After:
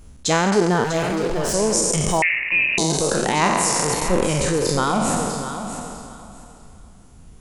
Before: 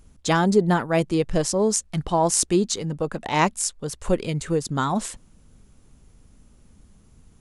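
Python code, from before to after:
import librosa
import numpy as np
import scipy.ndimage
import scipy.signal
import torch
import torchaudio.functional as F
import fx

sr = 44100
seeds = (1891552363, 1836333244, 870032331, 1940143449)

p1 = fx.spec_trails(x, sr, decay_s=2.2)
p2 = fx.dereverb_blind(p1, sr, rt60_s=0.69)
p3 = fx.over_compress(p2, sr, threshold_db=-26.0, ratio=-1.0)
p4 = p2 + (p3 * librosa.db_to_amplitude(-3.0))
p5 = fx.clip_hard(p4, sr, threshold_db=-18.5, at=(0.84, 1.54))
p6 = p5 + fx.echo_feedback(p5, sr, ms=647, feedback_pct=19, wet_db=-10, dry=0)
p7 = fx.freq_invert(p6, sr, carrier_hz=2800, at=(2.22, 2.78))
y = p7 * librosa.db_to_amplitude(-2.0)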